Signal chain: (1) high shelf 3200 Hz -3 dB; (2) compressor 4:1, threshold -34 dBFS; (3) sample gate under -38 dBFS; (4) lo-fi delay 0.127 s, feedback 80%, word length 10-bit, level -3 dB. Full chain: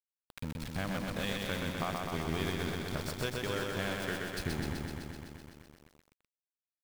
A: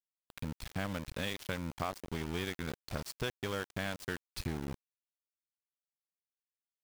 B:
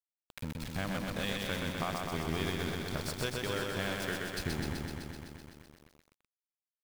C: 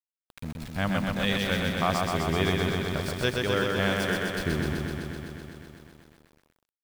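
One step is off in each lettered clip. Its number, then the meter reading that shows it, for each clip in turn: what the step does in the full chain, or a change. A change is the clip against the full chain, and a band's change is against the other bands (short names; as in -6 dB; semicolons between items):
4, crest factor change +2.0 dB; 1, 8 kHz band +1.5 dB; 2, mean gain reduction 6.0 dB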